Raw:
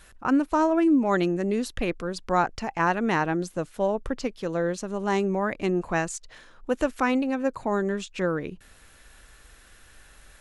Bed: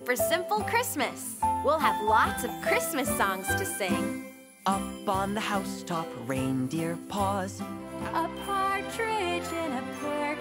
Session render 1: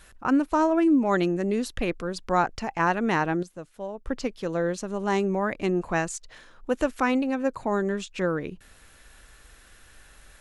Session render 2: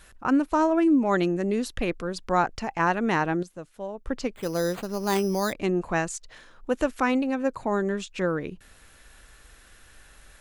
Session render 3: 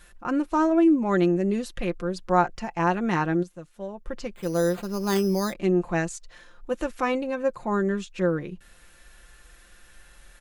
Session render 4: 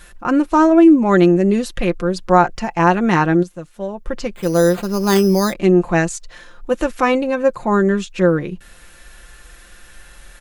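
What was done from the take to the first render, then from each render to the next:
0:03.43–0:04.07: clip gain −10 dB
0:04.35–0:05.53: bad sample-rate conversion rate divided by 8×, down none, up hold
harmonic and percussive parts rebalanced percussive −5 dB; comb filter 5.7 ms, depth 53%
level +9.5 dB; brickwall limiter −1 dBFS, peak gain reduction 2.5 dB

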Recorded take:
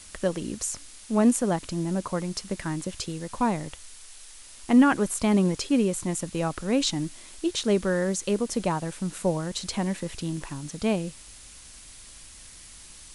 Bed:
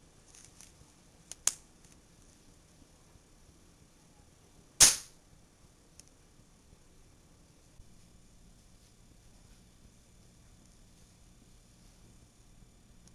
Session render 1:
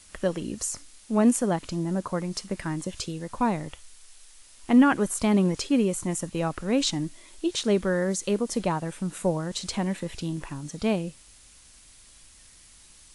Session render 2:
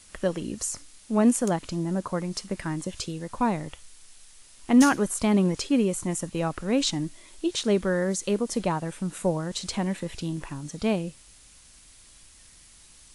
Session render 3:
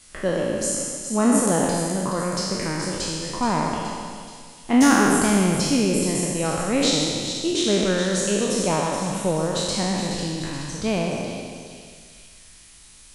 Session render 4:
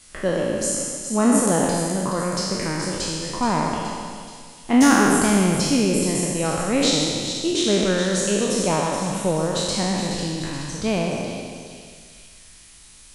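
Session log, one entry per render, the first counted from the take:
noise reduction from a noise print 6 dB
mix in bed −11.5 dB
peak hold with a decay on every bin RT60 1.91 s; echo with a time of its own for lows and highs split 2,700 Hz, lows 133 ms, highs 424 ms, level −8 dB
level +1 dB

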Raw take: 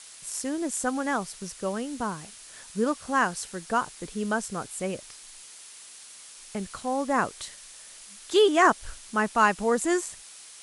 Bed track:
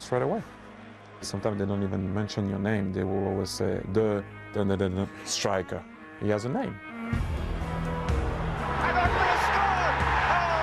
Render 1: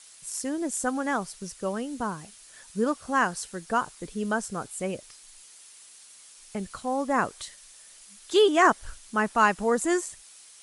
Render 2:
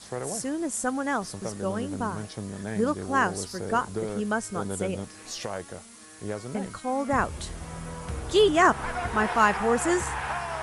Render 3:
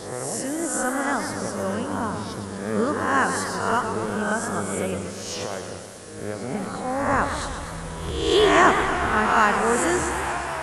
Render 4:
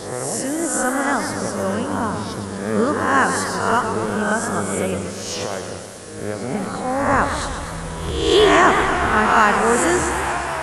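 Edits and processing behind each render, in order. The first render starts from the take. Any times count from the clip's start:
broadband denoise 6 dB, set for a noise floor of −47 dBFS
mix in bed track −7 dB
peak hold with a rise ahead of every peak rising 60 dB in 0.88 s; feedback echo with a swinging delay time 122 ms, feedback 70%, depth 155 cents, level −8.5 dB
level +4.5 dB; brickwall limiter −3 dBFS, peak gain reduction 3 dB

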